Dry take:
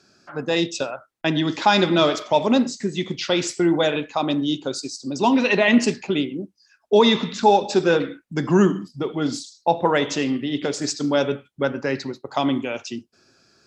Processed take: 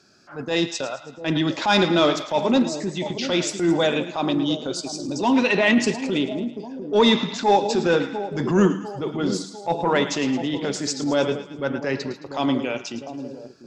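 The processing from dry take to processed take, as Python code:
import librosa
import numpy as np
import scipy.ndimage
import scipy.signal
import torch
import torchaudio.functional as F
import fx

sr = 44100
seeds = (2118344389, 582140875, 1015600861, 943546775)

y = fx.echo_split(x, sr, split_hz=760.0, low_ms=698, high_ms=109, feedback_pct=52, wet_db=-12.0)
y = 10.0 ** (-5.0 / 20.0) * np.tanh(y / 10.0 ** (-5.0 / 20.0))
y = fx.transient(y, sr, attack_db=-8, sustain_db=-2)
y = y * librosa.db_to_amplitude(1.0)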